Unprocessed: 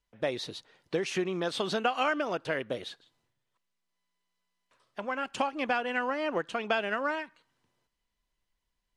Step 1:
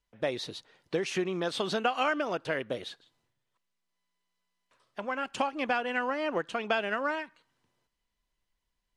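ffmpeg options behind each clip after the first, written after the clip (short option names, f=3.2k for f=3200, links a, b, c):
-af anull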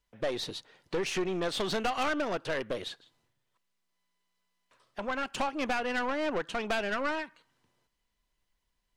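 -af "aeval=exprs='(tanh(28.2*val(0)+0.35)-tanh(0.35))/28.2':c=same,volume=3.5dB"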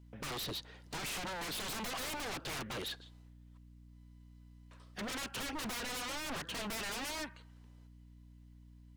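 -filter_complex "[0:a]acrossover=split=5800[a][b];[b]acompressor=threshold=-57dB:ratio=4:attack=1:release=60[c];[a][c]amix=inputs=2:normalize=0,aeval=exprs='0.0133*(abs(mod(val(0)/0.0133+3,4)-2)-1)':c=same,aeval=exprs='val(0)+0.00126*(sin(2*PI*60*n/s)+sin(2*PI*2*60*n/s)/2+sin(2*PI*3*60*n/s)/3+sin(2*PI*4*60*n/s)/4+sin(2*PI*5*60*n/s)/5)':c=same,volume=2.5dB"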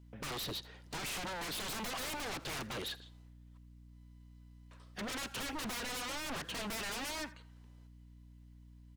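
-af "aecho=1:1:82:0.0944"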